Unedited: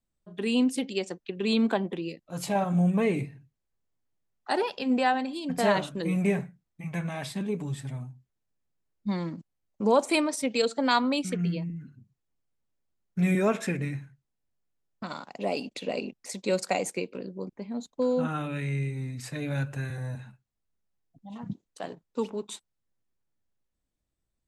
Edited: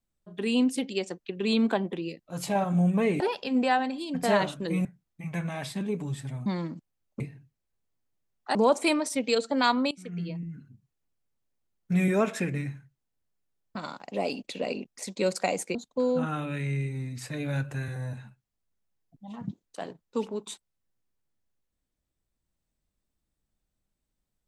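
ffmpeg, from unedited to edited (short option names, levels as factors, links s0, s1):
-filter_complex "[0:a]asplit=8[s0][s1][s2][s3][s4][s5][s6][s7];[s0]atrim=end=3.202[s8];[s1]atrim=start=4.548:end=6.202[s9];[s2]atrim=start=6.448:end=8.062[s10];[s3]atrim=start=9.078:end=9.822[s11];[s4]atrim=start=3.198:end=4.552[s12];[s5]atrim=start=9.818:end=11.18,asetpts=PTS-STARTPTS,afade=t=out:st=1.358:d=0.004:c=hsin:silence=0.0841395[s13];[s6]atrim=start=11.18:end=17.022,asetpts=PTS-STARTPTS,afade=t=in:d=0.62:silence=0.0841395[s14];[s7]atrim=start=17.768[s15];[s8][s9]acrossfade=d=0.004:c1=hsin:c2=hsin[s16];[s16][s10]acrossfade=d=0.004:c1=hsin:c2=hsin[s17];[s17][s11]acrossfade=d=0.004:c1=hsin:c2=hsin[s18];[s18][s12]acrossfade=d=0.004:c1=hsin:c2=hsin[s19];[s13][s14]concat=n=2:v=0:a=1[s20];[s19][s20]acrossfade=d=0.004:c1=hsin:c2=hsin[s21];[s21][s15]acrossfade=d=0.004:c1=hsin:c2=hsin"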